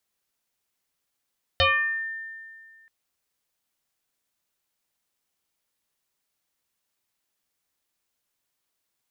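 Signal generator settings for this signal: FM tone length 1.28 s, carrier 1.8 kHz, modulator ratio 0.35, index 3.9, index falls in 0.61 s exponential, decay 2.03 s, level -15.5 dB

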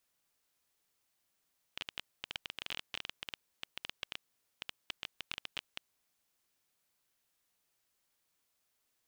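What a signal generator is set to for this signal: random clicks 13 per s -21 dBFS 4.17 s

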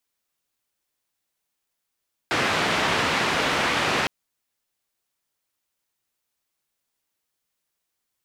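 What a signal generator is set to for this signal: noise band 99–2400 Hz, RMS -23 dBFS 1.76 s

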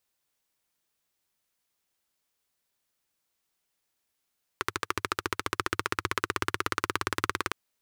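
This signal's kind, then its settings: single-cylinder engine model, changing speed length 2.91 s, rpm 1600, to 2200, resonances 100/360/1200 Hz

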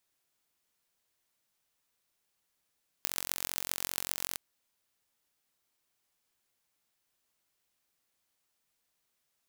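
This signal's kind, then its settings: pulse train 45.1 per s, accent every 6, -2.5 dBFS 1.32 s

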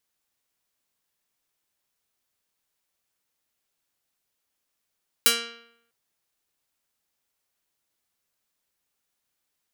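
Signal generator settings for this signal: plucked string A#3, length 0.65 s, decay 0.75 s, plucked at 0.27, medium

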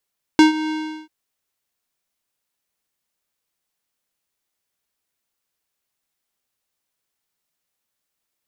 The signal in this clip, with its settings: synth note square D#4 12 dB/octave, low-pass 4.2 kHz, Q 0.95, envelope 0.5 oct, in 0.08 s, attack 1.1 ms, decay 0.13 s, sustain -15.5 dB, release 0.38 s, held 0.31 s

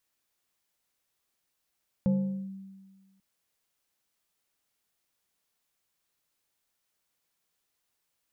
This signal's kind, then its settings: FM tone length 1.14 s, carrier 193 Hz, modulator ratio 1.73, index 0.54, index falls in 0.44 s linear, decay 1.52 s, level -20 dB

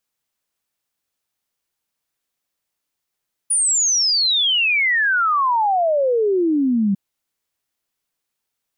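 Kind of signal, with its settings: log sweep 9.8 kHz -> 190 Hz 3.45 s -14.5 dBFS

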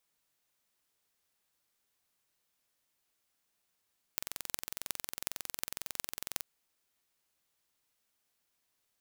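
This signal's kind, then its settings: pulse train 22 per s, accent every 8, -4.5 dBFS 2.27 s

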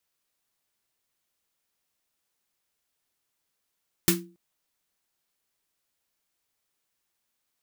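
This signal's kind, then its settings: snare drum length 0.28 s, tones 180 Hz, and 340 Hz, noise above 1 kHz, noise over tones 3 dB, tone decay 0.38 s, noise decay 0.19 s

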